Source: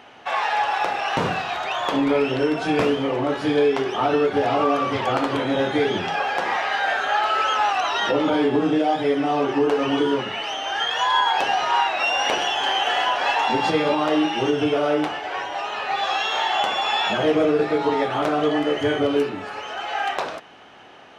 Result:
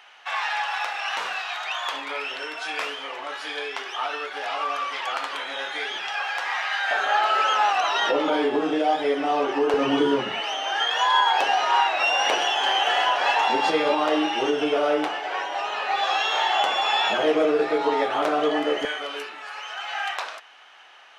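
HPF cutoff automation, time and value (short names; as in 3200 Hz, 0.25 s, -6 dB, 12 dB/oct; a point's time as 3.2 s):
1200 Hz
from 6.91 s 380 Hz
from 9.74 s 150 Hz
from 10.4 s 350 Hz
from 18.85 s 1100 Hz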